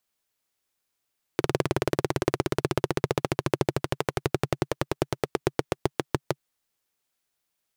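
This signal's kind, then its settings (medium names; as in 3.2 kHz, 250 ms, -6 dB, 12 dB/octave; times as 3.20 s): single-cylinder engine model, changing speed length 5.00 s, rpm 2300, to 700, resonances 140/360 Hz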